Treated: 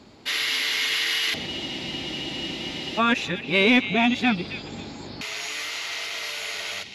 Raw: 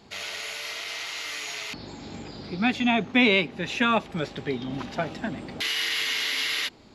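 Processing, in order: reverse the whole clip; high-pass 51 Hz; in parallel at -9.5 dB: saturation -19 dBFS, distortion -11 dB; on the sum: repeats whose band climbs or falls 270 ms, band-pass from 2.8 kHz, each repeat 0.7 oct, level -8.5 dB; spectral freeze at 1.48 s, 1.50 s

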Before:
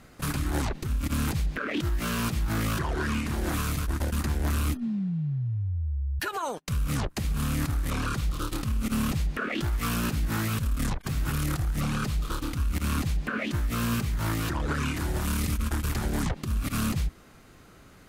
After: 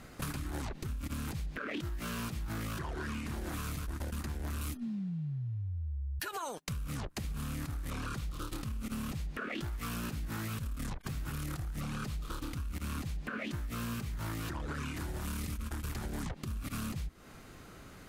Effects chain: 4.61–6.64 s: treble shelf 3.6 kHz +7 dB; compression 10:1, threshold -36 dBFS, peak gain reduction 13.5 dB; trim +1 dB

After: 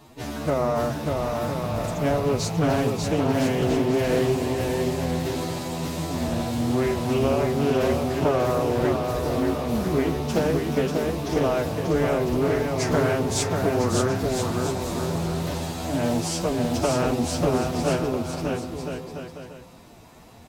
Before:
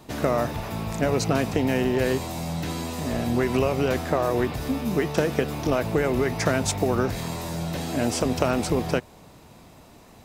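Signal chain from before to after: de-hum 51.45 Hz, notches 10; dynamic bell 1.9 kHz, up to -5 dB, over -42 dBFS, Q 1.5; time stretch by phase-locked vocoder 2×; bouncing-ball echo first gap 590 ms, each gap 0.7×, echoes 5; loudspeaker Doppler distortion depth 0.3 ms

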